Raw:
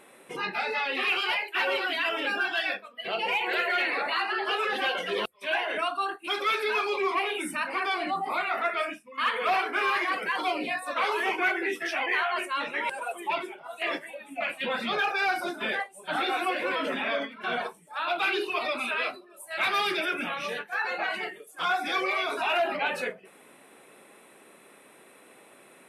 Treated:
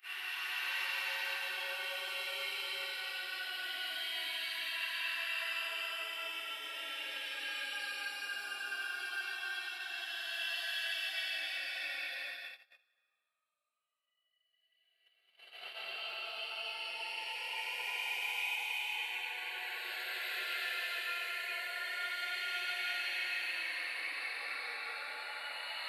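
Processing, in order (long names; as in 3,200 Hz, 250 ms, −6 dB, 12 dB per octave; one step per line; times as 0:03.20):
extreme stretch with random phases 10×, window 0.25 s, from 0:01.51
noise gate −32 dBFS, range −28 dB
first difference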